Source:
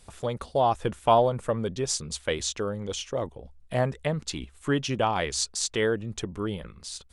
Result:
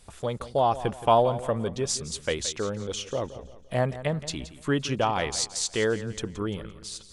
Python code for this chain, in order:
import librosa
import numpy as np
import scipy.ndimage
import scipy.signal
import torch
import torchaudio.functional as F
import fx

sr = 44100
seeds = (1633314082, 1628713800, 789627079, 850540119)

y = fx.echo_feedback(x, sr, ms=172, feedback_pct=40, wet_db=-14.5)